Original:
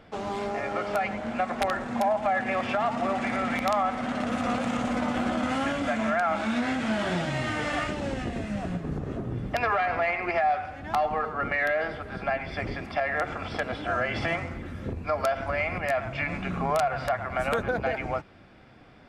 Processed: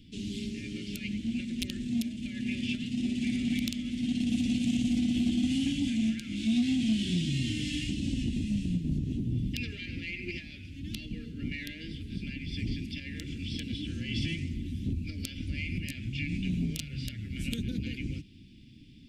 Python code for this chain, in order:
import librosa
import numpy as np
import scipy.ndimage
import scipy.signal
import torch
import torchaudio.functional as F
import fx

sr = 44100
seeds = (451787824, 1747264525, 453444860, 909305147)

p1 = scipy.signal.sosfilt(scipy.signal.ellip(3, 1.0, 60, [280.0, 2900.0], 'bandstop', fs=sr, output='sos'), x)
p2 = 10.0 ** (-26.5 / 20.0) * np.tanh(p1 / 10.0 ** (-26.5 / 20.0))
y = p1 + (p2 * librosa.db_to_amplitude(-7.0))